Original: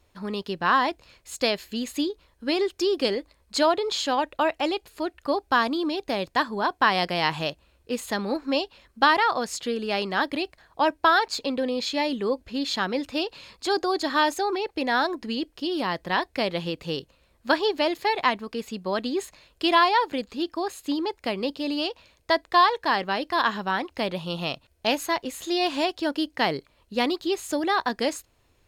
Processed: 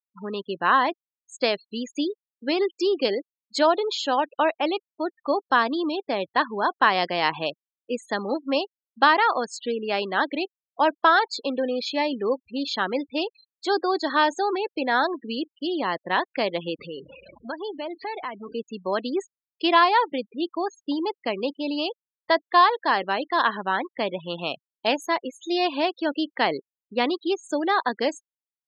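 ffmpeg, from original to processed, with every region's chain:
-filter_complex "[0:a]asettb=1/sr,asplit=3[a][b][c];[a]atrim=end=16.794[d];[b]atrim=start=16.79:end=18.53,asetpts=PTS-STARTPTS,afade=t=in:d=0.004:c=qsin,afade=t=out:st=1.736:d=0.004:c=qsin,aeval=exprs='val(0)+0.5*0.0211*sgn(val(0))':c=same,acompressor=threshold=-35dB:ratio=2.5:attack=3.2:release=140:knee=1:detection=peak[e];[c]atrim=start=18.526[f];[d][e]acrossfade=d=0.004:c1=hsin:c2=qsin[g];[g][f]acrossfade=d=0.004:c1=qsin:c2=hsin,afftfilt=real='re*gte(hypot(re,im),0.0251)':imag='im*gte(hypot(re,im),0.0251)':win_size=1024:overlap=0.75,highpass=250,highshelf=f=6.2k:g=-10,volume=2dB"

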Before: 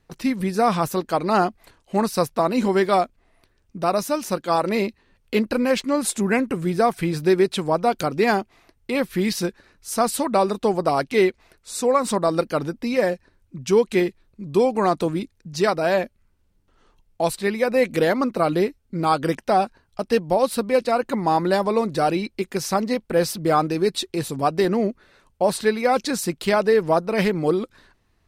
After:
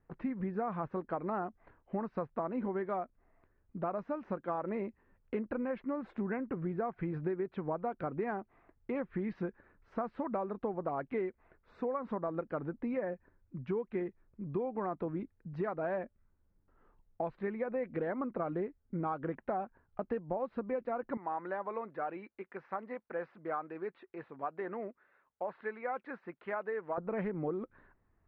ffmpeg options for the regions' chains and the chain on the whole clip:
-filter_complex "[0:a]asettb=1/sr,asplit=3[a][b][c];[a]atrim=end=21.174[d];[b]atrim=start=21.17:end=26.98,asetpts=PTS-STARTPTS,afade=t=in:d=0.004:c=qsin,afade=t=out:st=5.806:d=0.004:c=qsin,highpass=f=1.4k:p=1,acrossover=split=2700[e][f];[f]acompressor=threshold=-43dB:ratio=4:attack=1:release=60[g];[e][g]amix=inputs=2:normalize=0[h];[c]atrim=start=26.976[i];[d][h]acrossfade=d=0.004:c1=hsin:c2=qsin[j];[j][i]acrossfade=d=0.004:c1=qsin:c2=hsin,lowpass=f=1.8k:w=0.5412,lowpass=f=1.8k:w=1.3066,acompressor=threshold=-25dB:ratio=6,volume=-7.5dB"

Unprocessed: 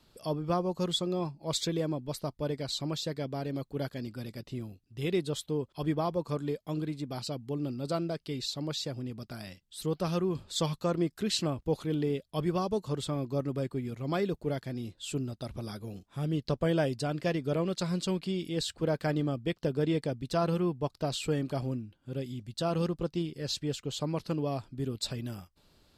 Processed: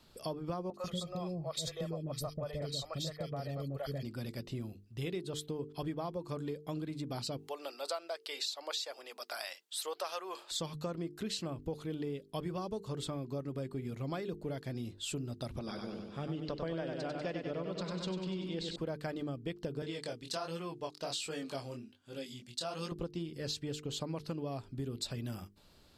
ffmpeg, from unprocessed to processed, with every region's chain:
-filter_complex "[0:a]asettb=1/sr,asplit=3[a][b][c];[a]atrim=end=0.704[d];[b]atrim=start=0.7:end=4.03,asetpts=PTS-STARTPTS,afade=t=in:d=0.004:c=qsin,afade=t=out:st=3.326:d=0.004:c=qsin,aecho=1:1:1.6:0.57,atrim=end_sample=146853,acrossover=split=520|2200[e][f][g];[g]adelay=40[h];[e]adelay=140[i];[i][f][h]amix=inputs=3:normalize=0,atrim=end_sample=146853[j];[c]atrim=start=4.026[k];[d][j]acrossfade=d=0.004:c1=hsin:c2=qsin[l];[l][k]acrossfade=d=0.004:c1=qsin:c2=hsin,asettb=1/sr,asplit=3[m][n][o];[m]atrim=end=7.374[p];[n]atrim=start=7.37:end=10.51,asetpts=PTS-STARTPTS,afade=t=in:d=0.004:c=qsin,afade=t=out:st=3.136:d=0.004:c=qsin,highpass=f=610:w=0.5412,highpass=f=610:w=1.3066,acontrast=46[q];[o]atrim=start=10.506[r];[p][q]acrossfade=d=0.004:c1=hsin:c2=qsin[s];[s][r]acrossfade=d=0.004:c1=qsin:c2=hsin,asettb=1/sr,asplit=3[t][u][v];[t]atrim=end=15.594[w];[u]atrim=start=15.59:end=18.76,asetpts=PTS-STARTPTS,afade=t=in:d=0.004:c=qsin,afade=t=out:st=3.166:d=0.004:c=qsin,lowpass=4.8k,equalizer=f=110:t=o:w=0.55:g=-14,aecho=1:1:97|194|291|388|485|582|679|776:0.562|0.337|0.202|0.121|0.0729|0.0437|0.0262|0.0157,atrim=end_sample=139797[x];[v]atrim=start=18.756[y];[w][x]acrossfade=d=0.004:c1=hsin:c2=qsin[z];[z][y]acrossfade=d=0.004:c1=qsin:c2=hsin,asettb=1/sr,asplit=3[aa][ab][ac];[aa]atrim=end=19.824[ad];[ab]atrim=start=19.82:end=22.92,asetpts=PTS-STARTPTS,afade=t=in:d=0.004:c=qsin,afade=t=out:st=3.096:d=0.004:c=qsin,lowpass=6.1k,flanger=delay=18:depth=6.9:speed=1.3,aemphasis=mode=production:type=riaa[ae];[ac]atrim=start=22.916[af];[ad][ae]acrossfade=d=0.004:c1=hsin:c2=qsin[ag];[ag][af]acrossfade=d=0.004:c1=qsin:c2=hsin,bandreject=f=50:t=h:w=6,bandreject=f=100:t=h:w=6,bandreject=f=150:t=h:w=6,bandreject=f=200:t=h:w=6,bandreject=f=250:t=h:w=6,bandreject=f=300:t=h:w=6,bandreject=f=350:t=h:w=6,bandreject=f=400:t=h:w=6,bandreject=f=450:t=h:w=6,acompressor=threshold=-37dB:ratio=6,volume=1.5dB"

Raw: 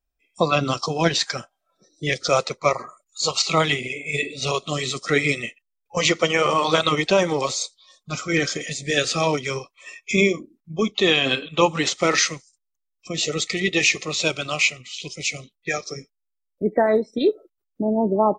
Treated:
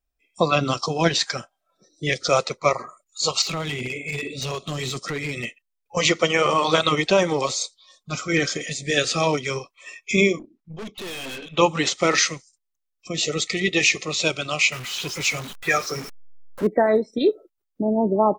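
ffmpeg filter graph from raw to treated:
-filter_complex "[0:a]asettb=1/sr,asplit=3[a][b][c];[a]atrim=end=3.424[d];[b]atrim=start=3.42:end=5.45,asetpts=PTS-STARTPTS,afade=t=in:d=0.004:c=qsin,afade=t=out:st=2.026:d=0.004:c=qsin,equalizer=f=89:w=0.42:g=6,acompressor=threshold=-22dB:ratio=10:attack=3.2:release=140:knee=1:detection=peak,asoftclip=type=hard:threshold=-23dB[e];[c]atrim=start=5.446[f];[d][e]acrossfade=d=0.004:c1=hsin:c2=qsin[g];[g][f]acrossfade=d=0.004:c1=qsin:c2=hsin,asettb=1/sr,asplit=3[h][i][j];[h]atrim=end=10.394[k];[i]atrim=start=10.39:end=11.57,asetpts=PTS-STARTPTS,afade=t=in:d=0.004:c=qsin,afade=t=out:st=1.176:d=0.004:c=qsin,lowpass=5.3k,aeval=exprs='(tanh(39.8*val(0)+0.3)-tanh(0.3))/39.8':c=same[l];[j]atrim=start=11.566[m];[k][l]acrossfade=d=0.004:c1=hsin:c2=qsin[n];[n][m]acrossfade=d=0.004:c1=qsin:c2=hsin,asettb=1/sr,asplit=3[o][p][q];[o]atrim=end=14.724[r];[p]atrim=start=14.72:end=16.67,asetpts=PTS-STARTPTS,afade=t=in:d=0.004:c=qsin,afade=t=out:st=1.946:d=0.004:c=qsin,aeval=exprs='val(0)+0.5*0.0251*sgn(val(0))':c=same,equalizer=f=1.3k:w=1.2:g=8.5[s];[q]atrim=start=16.666[t];[r][s]acrossfade=d=0.004:c1=hsin:c2=qsin[u];[u][t]acrossfade=d=0.004:c1=qsin:c2=hsin"

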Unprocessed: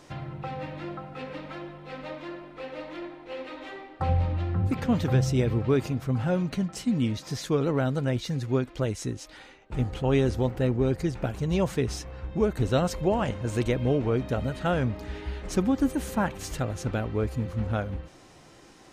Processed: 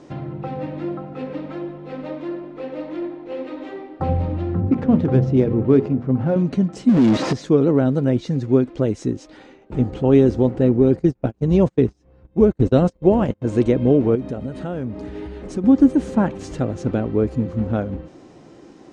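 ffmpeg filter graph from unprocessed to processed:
-filter_complex "[0:a]asettb=1/sr,asplit=3[a][b][c];[a]atrim=end=4.604[d];[b]atrim=start=4.6:end=6.36,asetpts=PTS-STARTPTS,afade=t=in:d=0.004:c=qsin,afade=t=out:st=1.756:d=0.004:c=qsin,bandreject=f=60:t=h:w=6,bandreject=f=120:t=h:w=6,bandreject=f=180:t=h:w=6,bandreject=f=240:t=h:w=6,bandreject=f=300:t=h:w=6,bandreject=f=360:t=h:w=6,bandreject=f=420:t=h:w=6,bandreject=f=480:t=h:w=6,adynamicsmooth=sensitivity=4:basefreq=1.7k[e];[c]atrim=start=6.356[f];[d][e]acrossfade=d=0.004:c1=hsin:c2=qsin[g];[g][f]acrossfade=d=0.004:c1=qsin:c2=hsin,asettb=1/sr,asplit=3[h][i][j];[h]atrim=end=6.894[k];[i]atrim=start=6.89:end=7.33,asetpts=PTS-STARTPTS,afade=t=in:d=0.004:c=qsin,afade=t=out:st=0.436:d=0.004:c=qsin,acrossover=split=3300[l][m];[m]acompressor=threshold=-50dB:ratio=4:attack=1:release=60[n];[l][n]amix=inputs=2:normalize=0,asoftclip=type=hard:threshold=-24.5dB,asplit=2[o][p];[p]highpass=f=720:p=1,volume=39dB,asoftclip=type=tanh:threshold=-18dB[q];[o][q]amix=inputs=2:normalize=0,lowpass=f=4.7k:p=1,volume=-6dB[r];[j]atrim=start=7.326[s];[k][r]acrossfade=d=0.004:c1=hsin:c2=qsin[t];[t][s]acrossfade=d=0.004:c1=qsin:c2=hsin,asettb=1/sr,asplit=3[u][v][w];[u]atrim=end=10.994[x];[v]atrim=start=10.99:end=13.42,asetpts=PTS-STARTPTS,afade=t=in:d=0.004:c=qsin,afade=t=out:st=2.426:d=0.004:c=qsin,agate=range=-39dB:threshold=-29dB:ratio=16:release=100:detection=peak,lowshelf=f=74:g=9.5,acompressor=mode=upward:threshold=-35dB:ratio=2.5:attack=3.2:release=140:knee=2.83:detection=peak[y];[w]atrim=start=13.416[z];[x][y]acrossfade=d=0.004:c1=hsin:c2=qsin[aa];[aa][z]acrossfade=d=0.004:c1=qsin:c2=hsin,asettb=1/sr,asplit=3[ab][ac][ad];[ab]atrim=end=14.154[ae];[ac]atrim=start=14.15:end=15.64,asetpts=PTS-STARTPTS,afade=t=in:d=0.004:c=qsin,afade=t=out:st=1.486:d=0.004:c=qsin,equalizer=f=9k:t=o:w=0.29:g=7.5,acompressor=threshold=-34dB:ratio=2.5:attack=3.2:release=140:knee=1:detection=peak[af];[ad]atrim=start=15.636[ag];[ae][af]acrossfade=d=0.004:c1=hsin:c2=qsin[ah];[ah][ag]acrossfade=d=0.004:c1=qsin:c2=hsin,lowpass=f=8.2k:w=0.5412,lowpass=f=8.2k:w=1.3066,equalizer=f=290:t=o:w=2.7:g=15,volume=-3dB"

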